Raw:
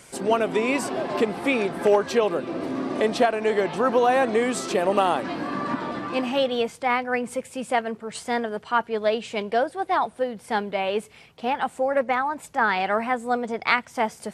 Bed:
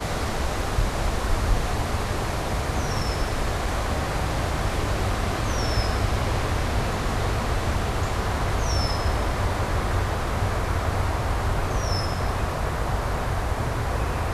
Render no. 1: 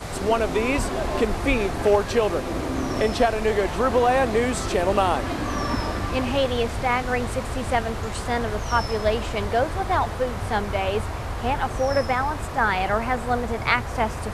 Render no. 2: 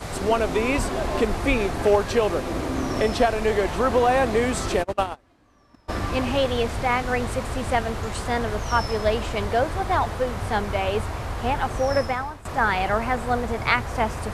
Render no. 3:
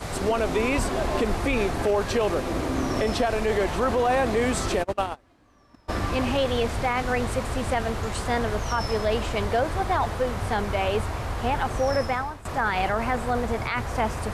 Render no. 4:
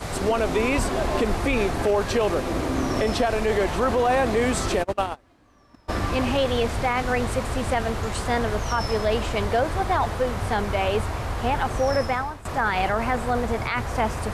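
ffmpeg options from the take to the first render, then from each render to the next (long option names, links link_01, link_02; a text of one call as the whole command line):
ffmpeg -i in.wav -i bed.wav -filter_complex "[1:a]volume=-5dB[link_01];[0:a][link_01]amix=inputs=2:normalize=0" out.wav
ffmpeg -i in.wav -filter_complex "[0:a]asplit=3[link_01][link_02][link_03];[link_01]afade=type=out:start_time=4.82:duration=0.02[link_04];[link_02]agate=range=-33dB:threshold=-19dB:ratio=16:release=100:detection=peak,afade=type=in:start_time=4.82:duration=0.02,afade=type=out:start_time=5.88:duration=0.02[link_05];[link_03]afade=type=in:start_time=5.88:duration=0.02[link_06];[link_04][link_05][link_06]amix=inputs=3:normalize=0,asplit=2[link_07][link_08];[link_07]atrim=end=12.45,asetpts=PTS-STARTPTS,afade=type=out:start_time=11.98:duration=0.47:silence=0.11885[link_09];[link_08]atrim=start=12.45,asetpts=PTS-STARTPTS,afade=type=in:duration=0.004:curve=hsin:silence=0.11885[link_10];[link_09][link_10]concat=n=2:v=0:a=1" out.wav
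ffmpeg -i in.wav -af "alimiter=limit=-14.5dB:level=0:latency=1:release=17" out.wav
ffmpeg -i in.wav -af "volume=1.5dB" out.wav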